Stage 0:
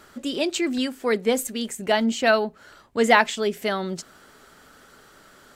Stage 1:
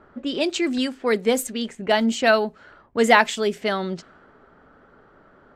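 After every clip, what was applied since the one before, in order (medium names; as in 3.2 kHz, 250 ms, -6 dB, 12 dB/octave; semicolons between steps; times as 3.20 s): level-controlled noise filter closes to 1.1 kHz, open at -19 dBFS; trim +1.5 dB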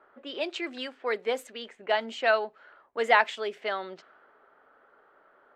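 three-band isolator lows -23 dB, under 400 Hz, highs -16 dB, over 3.9 kHz; trim -5 dB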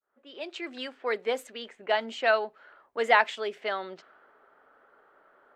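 fade-in on the opening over 0.91 s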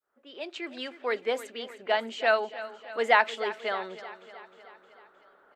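feedback delay 310 ms, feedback 59%, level -15 dB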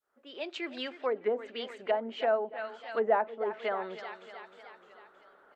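low-pass that closes with the level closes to 720 Hz, closed at -24.5 dBFS; warped record 33 1/3 rpm, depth 100 cents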